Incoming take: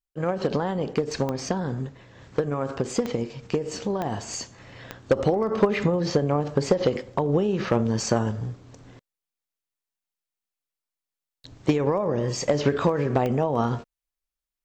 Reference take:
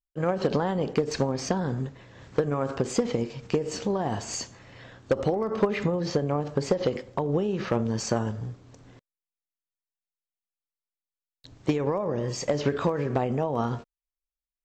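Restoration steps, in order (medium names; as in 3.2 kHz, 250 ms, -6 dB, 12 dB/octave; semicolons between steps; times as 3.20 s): de-click; gain correction -3.5 dB, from 4.58 s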